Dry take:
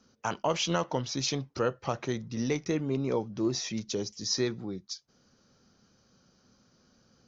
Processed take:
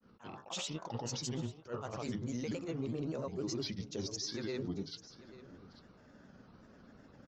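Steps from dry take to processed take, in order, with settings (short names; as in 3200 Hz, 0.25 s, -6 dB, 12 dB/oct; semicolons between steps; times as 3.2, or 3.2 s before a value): low-pass opened by the level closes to 2000 Hz, open at -28 dBFS; de-hum 59.85 Hz, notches 27; reverse; compressor 4:1, threshold -43 dBFS, peak gain reduction 16.5 dB; reverse; limiter -37.5 dBFS, peak gain reduction 9.5 dB; grains, pitch spread up and down by 3 st; echo 0.841 s -17 dB; attack slew limiter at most 270 dB/s; gain +9 dB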